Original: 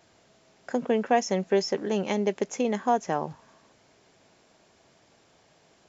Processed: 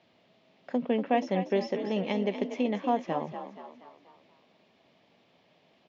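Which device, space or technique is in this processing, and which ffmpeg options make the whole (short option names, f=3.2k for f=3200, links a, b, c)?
frequency-shifting delay pedal into a guitar cabinet: -filter_complex "[0:a]asplit=6[a][b][c][d][e][f];[b]adelay=239,afreqshift=43,volume=-10dB[g];[c]adelay=478,afreqshift=86,volume=-16.2dB[h];[d]adelay=717,afreqshift=129,volume=-22.4dB[i];[e]adelay=956,afreqshift=172,volume=-28.6dB[j];[f]adelay=1195,afreqshift=215,volume=-34.8dB[k];[a][g][h][i][j][k]amix=inputs=6:normalize=0,highpass=98,equalizer=f=180:t=q:w=4:g=5,equalizer=f=250:t=q:w=4:g=6,equalizer=f=580:t=q:w=4:g=4,equalizer=f=1.5k:t=q:w=4:g=-8,lowpass=f=3.5k:w=0.5412,lowpass=f=3.5k:w=1.3066,asettb=1/sr,asplit=3[l][m][n];[l]atrim=end=0.764[o];[m]atrim=start=0.76:end=1.57,asetpts=PTS-STARTPTS,afade=t=in:d=0.004:c=qsin,afade=t=out:st=0.806:d=0.004:c=qsin,lowpass=6.4k[p];[n]atrim=start=1.566[q];[o][p]acrossfade=d=0.004:c1=hsin:c2=qsin[r];[r][q]acrossfade=d=0.004:c1=qsin:c2=hsin,highshelf=f=2.5k:g=10.5,volume=-6dB"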